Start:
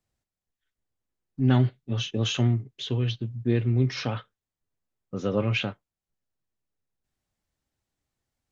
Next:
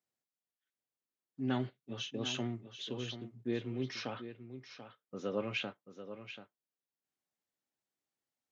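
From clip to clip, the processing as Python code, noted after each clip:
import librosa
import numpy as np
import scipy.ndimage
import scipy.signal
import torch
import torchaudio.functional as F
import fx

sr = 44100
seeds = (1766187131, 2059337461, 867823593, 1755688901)

y = scipy.signal.sosfilt(scipy.signal.butter(2, 230.0, 'highpass', fs=sr, output='sos'), x)
y = y + 10.0 ** (-11.0 / 20.0) * np.pad(y, (int(736 * sr / 1000.0), 0))[:len(y)]
y = y * librosa.db_to_amplitude(-8.5)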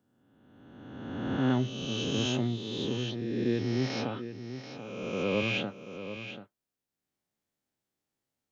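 y = fx.spec_swells(x, sr, rise_s=1.77)
y = fx.low_shelf(y, sr, hz=390.0, db=9.0)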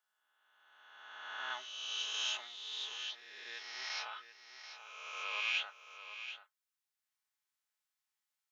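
y = scipy.signal.sosfilt(scipy.signal.butter(4, 990.0, 'highpass', fs=sr, output='sos'), x)
y = y + 0.46 * np.pad(y, (int(4.7 * sr / 1000.0), 0))[:len(y)]
y = y * librosa.db_to_amplitude(-2.0)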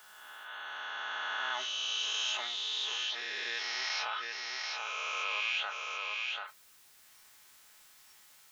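y = fx.noise_reduce_blind(x, sr, reduce_db=10)
y = fx.env_flatten(y, sr, amount_pct=70)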